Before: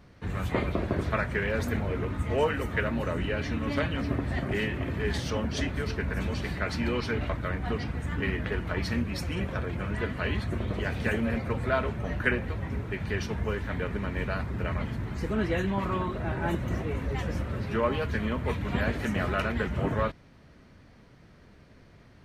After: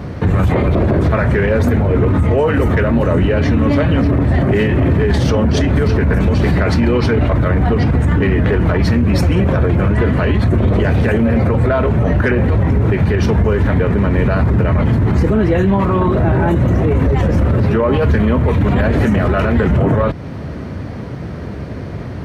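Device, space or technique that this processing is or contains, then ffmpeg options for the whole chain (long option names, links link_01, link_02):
mastering chain: -af "highpass=frequency=59:width=0.5412,highpass=frequency=59:width=1.3066,equalizer=frequency=220:width_type=o:width=0.77:gain=-2,acompressor=threshold=-35dB:ratio=2,asoftclip=type=tanh:threshold=-22dB,tiltshelf=frequency=1200:gain=6.5,alimiter=level_in=30dB:limit=-1dB:release=50:level=0:latency=1,volume=-5.5dB"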